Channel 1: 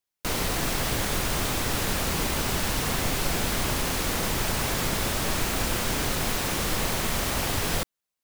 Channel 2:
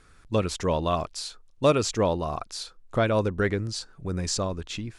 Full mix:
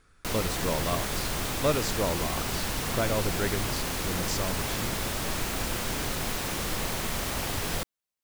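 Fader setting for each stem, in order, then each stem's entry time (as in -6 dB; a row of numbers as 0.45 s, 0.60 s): -4.0 dB, -5.5 dB; 0.00 s, 0.00 s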